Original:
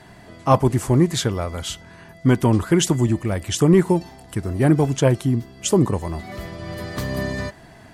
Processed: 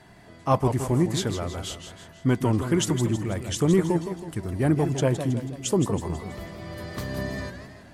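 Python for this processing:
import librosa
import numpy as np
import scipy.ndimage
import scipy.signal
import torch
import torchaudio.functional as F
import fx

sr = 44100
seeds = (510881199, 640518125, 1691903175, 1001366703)

y = fx.echo_warbled(x, sr, ms=162, feedback_pct=50, rate_hz=2.8, cents=187, wet_db=-9.0)
y = y * 10.0 ** (-6.0 / 20.0)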